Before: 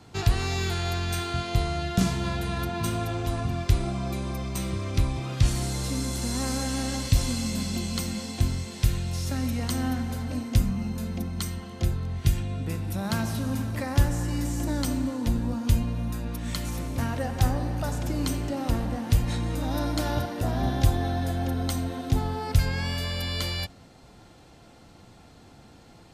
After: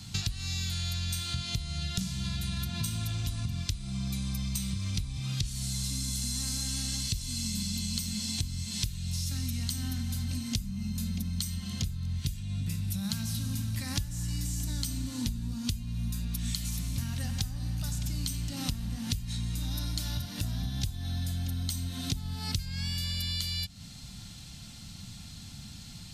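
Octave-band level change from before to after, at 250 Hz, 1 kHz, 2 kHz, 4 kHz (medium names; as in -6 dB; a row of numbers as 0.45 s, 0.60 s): -7.5 dB, -17.0 dB, -8.5 dB, +0.5 dB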